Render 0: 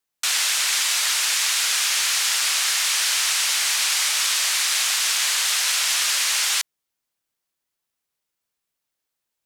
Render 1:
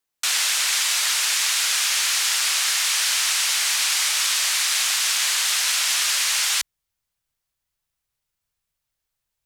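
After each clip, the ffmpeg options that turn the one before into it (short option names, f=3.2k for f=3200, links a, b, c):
-af "asubboost=boost=7.5:cutoff=100"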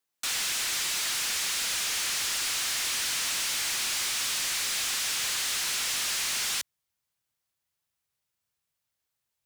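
-af "highpass=92,asoftclip=type=tanh:threshold=-25dB,volume=-2dB"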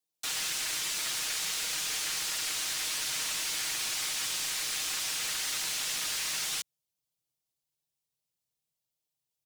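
-filter_complex "[0:a]aecho=1:1:6.4:0.7,acrossover=split=350|1000|2400[a][b][c][d];[c]acrusher=bits=5:mix=0:aa=0.5[e];[a][b][e][d]amix=inputs=4:normalize=0,volume=-5dB"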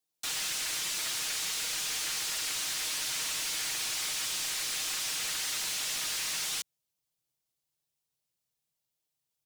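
-af "asoftclip=type=tanh:threshold=-28.5dB,volume=1.5dB"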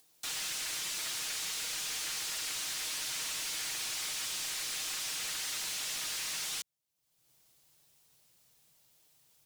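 -af "acompressor=mode=upward:threshold=-45dB:ratio=2.5,volume=-3.5dB"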